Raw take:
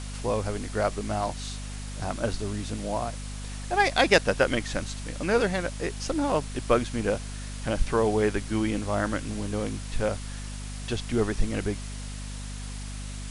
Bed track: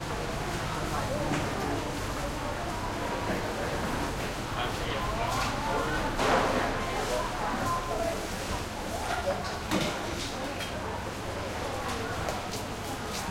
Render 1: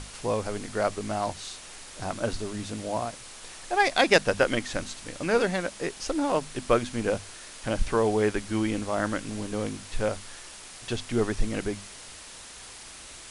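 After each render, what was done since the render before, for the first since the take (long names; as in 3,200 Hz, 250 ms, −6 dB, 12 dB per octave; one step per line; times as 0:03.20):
mains-hum notches 50/100/150/200/250 Hz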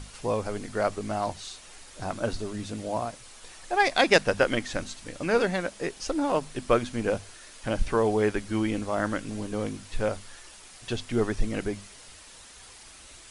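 broadband denoise 6 dB, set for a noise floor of −45 dBFS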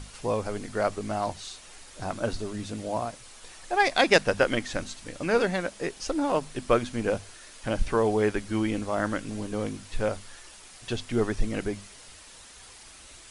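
no processing that can be heard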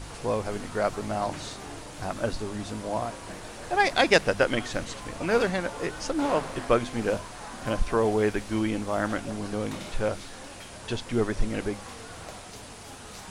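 mix in bed track −10 dB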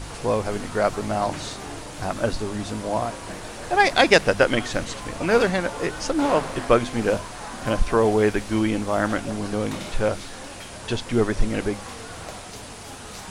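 level +5 dB
brickwall limiter −2 dBFS, peak gain reduction 1.5 dB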